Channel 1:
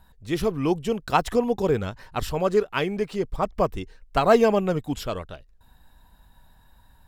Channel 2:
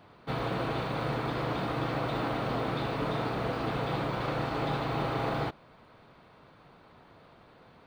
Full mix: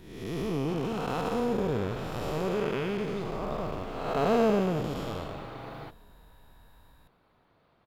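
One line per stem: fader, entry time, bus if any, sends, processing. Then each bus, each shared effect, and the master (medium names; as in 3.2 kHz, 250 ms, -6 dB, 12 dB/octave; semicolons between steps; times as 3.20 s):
0.0 dB, 0.00 s, no send, echo send -21 dB, spectral blur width 385 ms
-11.0 dB, 0.40 s, no send, no echo send, none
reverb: none
echo: feedback delay 372 ms, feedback 43%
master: peaking EQ 8.1 kHz -4 dB 0.2 oct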